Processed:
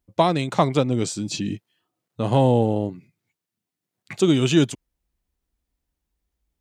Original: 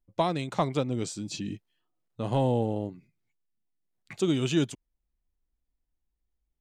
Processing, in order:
high-pass filter 45 Hz
level +8 dB

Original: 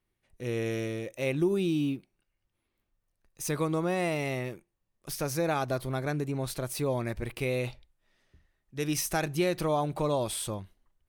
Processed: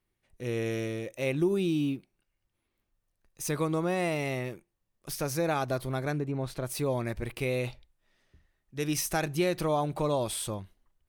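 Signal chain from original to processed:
0:06.18–0:06.65: low-pass filter 1,600 Hz → 3,200 Hz 6 dB per octave

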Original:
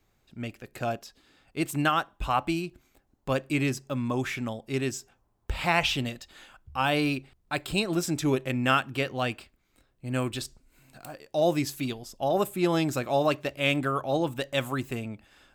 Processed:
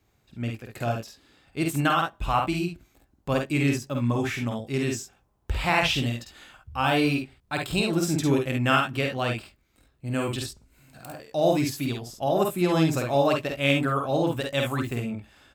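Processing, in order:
high-pass filter 61 Hz
low-shelf EQ 89 Hz +11 dB
multi-tap delay 50/68 ms −3.5/−8 dB

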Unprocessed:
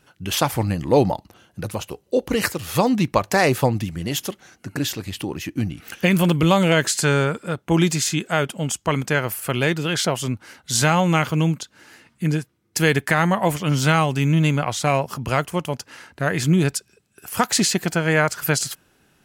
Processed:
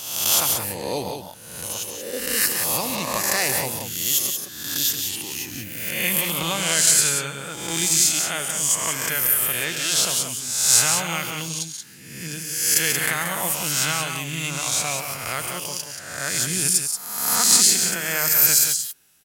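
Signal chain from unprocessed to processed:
peak hold with a rise ahead of every peak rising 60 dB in 1.06 s
first-order pre-emphasis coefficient 0.9
loudspeakers that aren't time-aligned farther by 47 metres −11 dB, 62 metres −7 dB
level +4 dB

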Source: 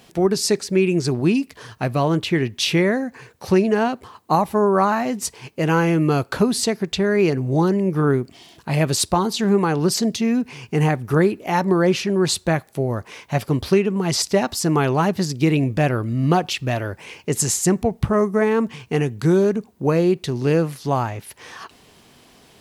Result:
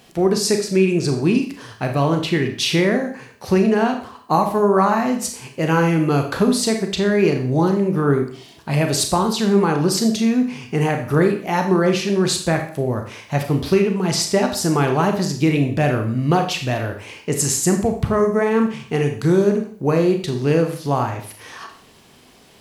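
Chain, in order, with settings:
four-comb reverb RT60 0.5 s, combs from 28 ms, DRR 4.5 dB

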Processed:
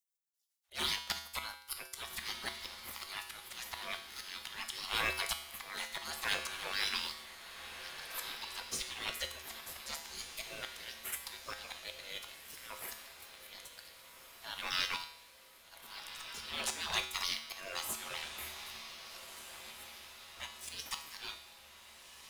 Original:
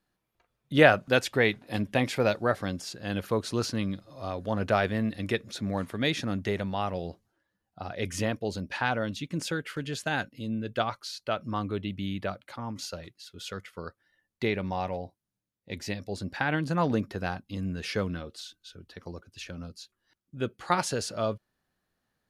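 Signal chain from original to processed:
gate on every frequency bin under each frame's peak −30 dB weak
in parallel at +3 dB: downward compressor 6 to 1, threshold −60 dBFS, peak gain reduction 22.5 dB
on the sum: leveller curve on the samples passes 3
volume swells 331 ms
tuned comb filter 75 Hz, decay 0.71 s, harmonics odd, mix 80%
on a send: feedback delay with all-pass diffusion 1,567 ms, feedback 55%, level −10 dB
on the sum: level +17 dB

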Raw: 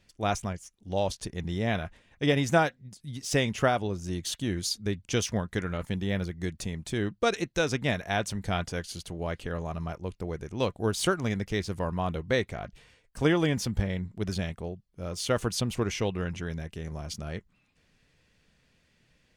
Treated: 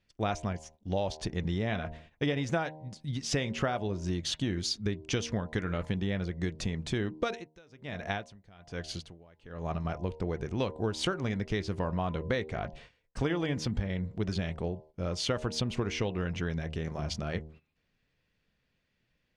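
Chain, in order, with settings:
hum removal 77.71 Hz, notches 13
noise gate −55 dBFS, range −14 dB
low-pass filter 4,900 Hz 12 dB per octave
downward compressor 5 to 1, threshold −32 dBFS, peak gain reduction 14 dB
0:07.22–0:09.85: tremolo with a sine in dB 1.2 Hz, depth 26 dB
level +4.5 dB

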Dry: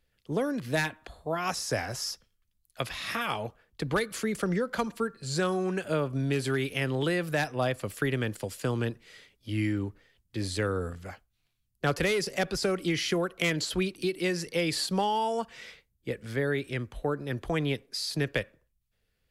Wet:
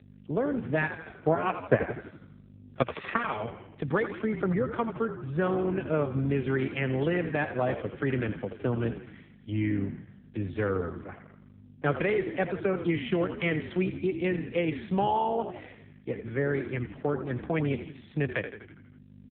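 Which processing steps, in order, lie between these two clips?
low-pass filter 2,500 Hz 12 dB per octave
mains hum 50 Hz, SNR 15 dB
0:00.83–0:03.18: transient designer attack +10 dB, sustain −5 dB
echo with shifted repeats 82 ms, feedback 57%, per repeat −49 Hz, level −9 dB
level +1.5 dB
AMR narrowband 5.9 kbit/s 8,000 Hz

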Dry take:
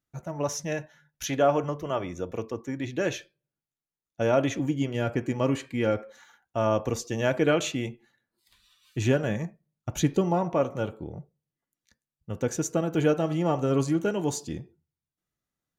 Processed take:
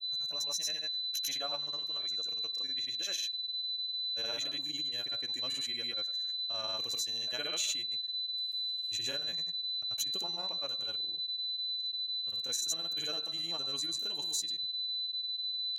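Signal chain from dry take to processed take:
steady tone 4,000 Hz −29 dBFS
granular cloud, pitch spread up and down by 0 semitones
first-order pre-emphasis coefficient 0.97
level +2 dB

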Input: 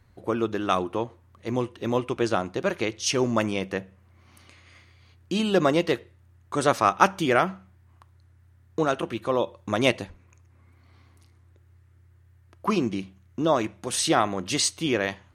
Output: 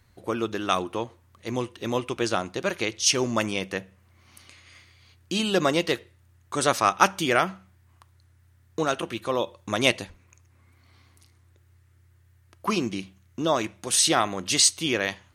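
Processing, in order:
high-shelf EQ 2,200 Hz +9.5 dB
level −2.5 dB

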